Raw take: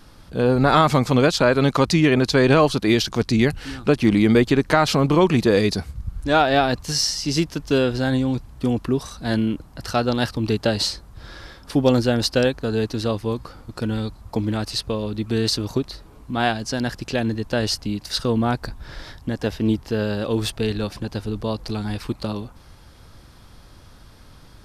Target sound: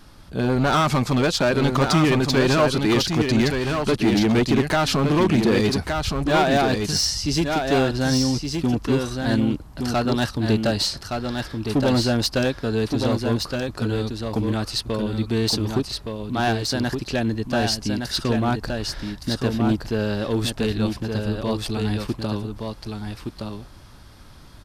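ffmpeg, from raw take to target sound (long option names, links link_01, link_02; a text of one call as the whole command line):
ffmpeg -i in.wav -filter_complex "[0:a]bandreject=frequency=490:width=12,asoftclip=type=hard:threshold=-15dB,asplit=2[link_01][link_02];[link_02]aecho=0:1:1168:0.562[link_03];[link_01][link_03]amix=inputs=2:normalize=0" out.wav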